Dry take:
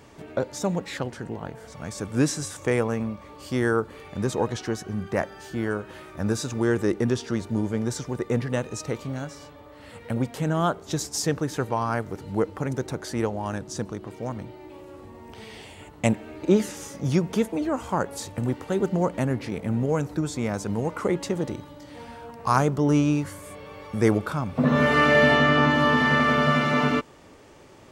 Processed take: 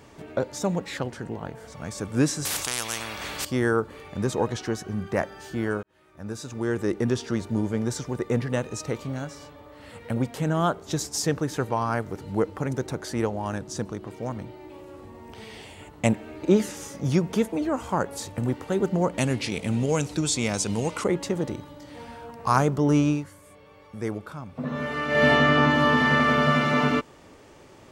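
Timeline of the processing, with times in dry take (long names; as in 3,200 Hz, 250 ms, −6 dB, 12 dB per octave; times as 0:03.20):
0:02.45–0:03.45: every bin compressed towards the loudest bin 10 to 1
0:05.83–0:07.19: fade in
0:19.18–0:21.04: flat-topped bell 4,900 Hz +12 dB 2.4 octaves
0:23.08–0:25.27: duck −10 dB, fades 0.19 s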